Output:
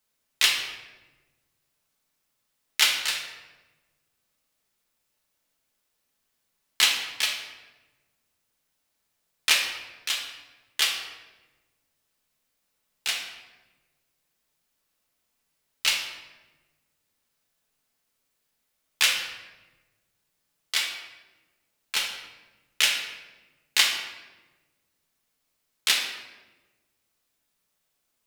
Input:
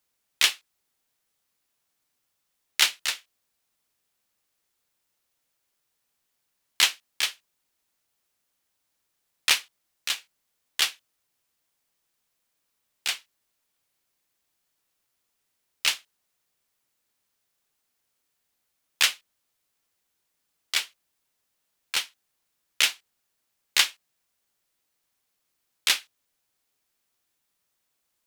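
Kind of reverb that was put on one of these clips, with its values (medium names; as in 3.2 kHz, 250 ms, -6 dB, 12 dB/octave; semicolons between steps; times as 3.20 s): simulated room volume 720 m³, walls mixed, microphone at 1.5 m; trim -1.5 dB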